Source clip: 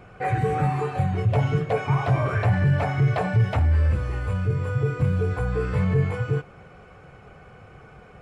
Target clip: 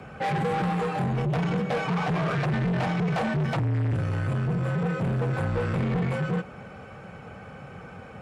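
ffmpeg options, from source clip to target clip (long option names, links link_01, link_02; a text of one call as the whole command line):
ffmpeg -i in.wav -af "asoftclip=type=tanh:threshold=-28dB,afreqshift=37,volume=4.5dB" out.wav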